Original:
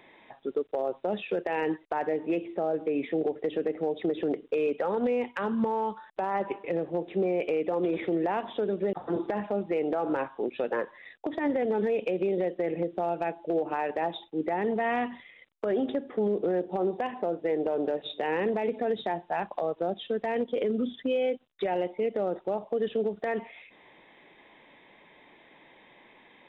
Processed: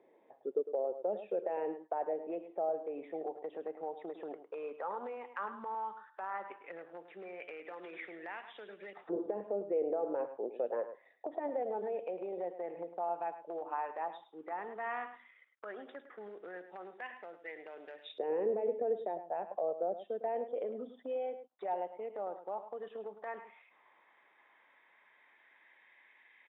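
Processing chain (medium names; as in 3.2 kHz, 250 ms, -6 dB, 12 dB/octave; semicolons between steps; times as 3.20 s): delay 105 ms -11.5 dB; LFO band-pass saw up 0.11 Hz 450–2200 Hz; 7.65–9.01 s: three bands compressed up and down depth 40%; trim -2.5 dB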